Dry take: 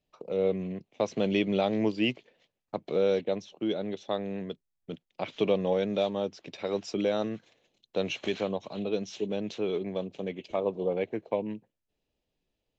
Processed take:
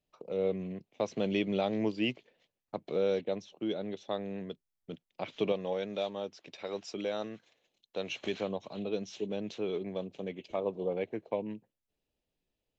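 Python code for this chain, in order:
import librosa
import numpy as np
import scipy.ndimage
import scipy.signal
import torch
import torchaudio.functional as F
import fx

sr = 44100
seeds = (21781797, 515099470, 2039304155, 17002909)

y = fx.low_shelf(x, sr, hz=390.0, db=-7.5, at=(5.52, 8.12))
y = F.gain(torch.from_numpy(y), -4.0).numpy()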